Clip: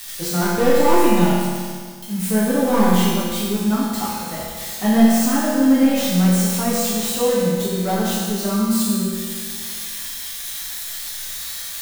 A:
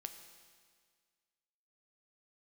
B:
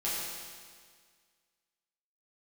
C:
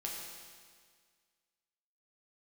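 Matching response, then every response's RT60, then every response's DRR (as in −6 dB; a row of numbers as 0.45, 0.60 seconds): B; 1.8, 1.8, 1.8 seconds; 7.0, −9.0, −2.5 decibels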